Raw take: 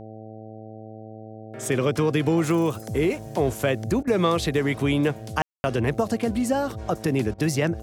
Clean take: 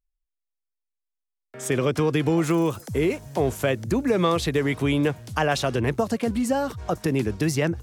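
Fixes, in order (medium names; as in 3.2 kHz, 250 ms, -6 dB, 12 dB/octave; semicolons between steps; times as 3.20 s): de-hum 109.4 Hz, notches 7; room tone fill 5.42–5.64 s; interpolate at 4.03/7.34 s, 42 ms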